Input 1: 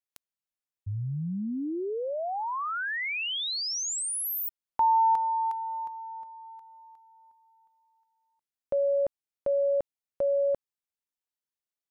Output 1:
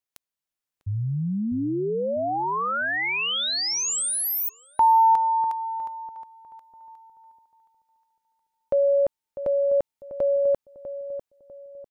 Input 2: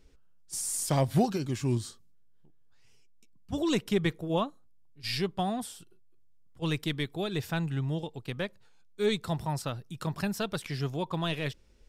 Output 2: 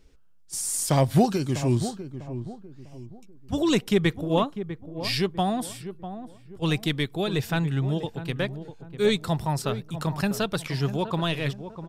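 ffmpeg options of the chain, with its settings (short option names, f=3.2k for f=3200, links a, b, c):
-filter_complex "[0:a]dynaudnorm=f=150:g=9:m=3dB,asplit=2[a][b];[b]adelay=648,lowpass=f=980:p=1,volume=-10.5dB,asplit=2[c][d];[d]adelay=648,lowpass=f=980:p=1,volume=0.38,asplit=2[e][f];[f]adelay=648,lowpass=f=980:p=1,volume=0.38,asplit=2[g][h];[h]adelay=648,lowpass=f=980:p=1,volume=0.38[i];[c][e][g][i]amix=inputs=4:normalize=0[j];[a][j]amix=inputs=2:normalize=0,volume=2.5dB"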